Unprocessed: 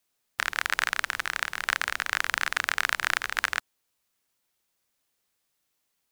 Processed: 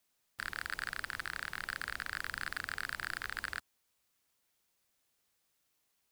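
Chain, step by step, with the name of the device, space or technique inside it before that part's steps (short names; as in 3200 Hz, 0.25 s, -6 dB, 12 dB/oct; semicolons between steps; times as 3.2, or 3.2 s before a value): open-reel tape (soft clip -24 dBFS, distortion -4 dB; bell 67 Hz +3.5 dB 1.13 oct; white noise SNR 42 dB); gain -2 dB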